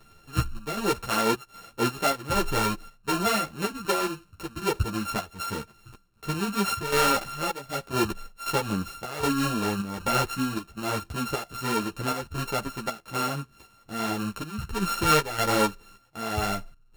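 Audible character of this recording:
a buzz of ramps at a fixed pitch in blocks of 32 samples
chopped level 1.3 Hz, depth 65%, duty 75%
a shimmering, thickened sound

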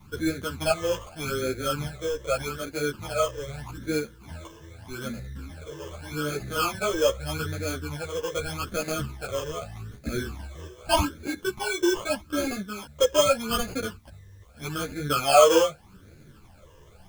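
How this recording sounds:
aliases and images of a low sample rate 1,900 Hz, jitter 0%
phaser sweep stages 12, 0.82 Hz, lowest notch 230–1,000 Hz
a quantiser's noise floor 12 bits, dither triangular
a shimmering, thickened sound

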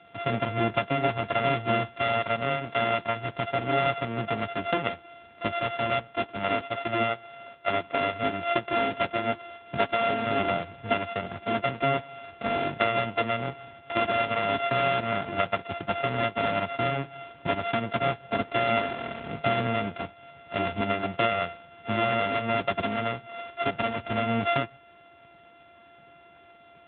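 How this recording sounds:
a buzz of ramps at a fixed pitch in blocks of 64 samples
AMR narrowband

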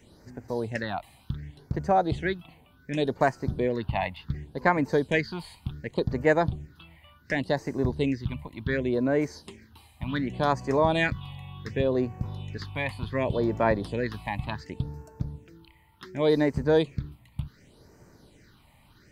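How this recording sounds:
phaser sweep stages 6, 0.68 Hz, lowest notch 390–3,500 Hz

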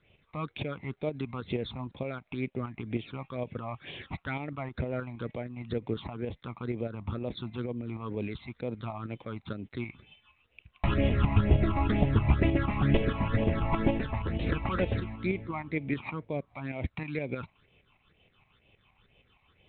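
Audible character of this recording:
phaser sweep stages 8, 2.1 Hz, lowest notch 440–1,400 Hz
tremolo saw up 6.4 Hz, depth 50%
G.726

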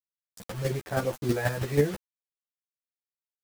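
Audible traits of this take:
a quantiser's noise floor 6 bits, dither none
chopped level 6.2 Hz, depth 60%, duty 15%
a shimmering, thickened sound

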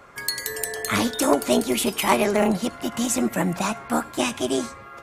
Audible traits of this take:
background noise floor −42 dBFS
spectral slope −4.0 dB per octave

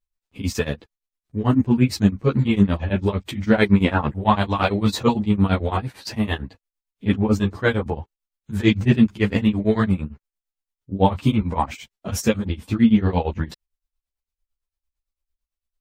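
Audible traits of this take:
tremolo triangle 8.9 Hz, depth 100%
a shimmering, thickened sound

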